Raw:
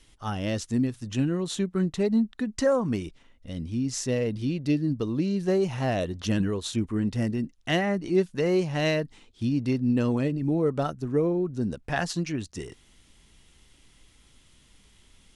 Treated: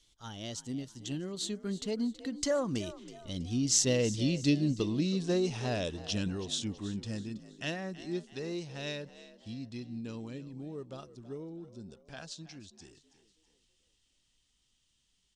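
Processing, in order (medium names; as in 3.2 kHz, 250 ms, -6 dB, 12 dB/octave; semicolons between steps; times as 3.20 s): Doppler pass-by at 4.12 s, 22 m/s, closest 23 m; high-order bell 4.9 kHz +10 dB; frequency-shifting echo 325 ms, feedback 42%, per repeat +51 Hz, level -16 dB; trim -2 dB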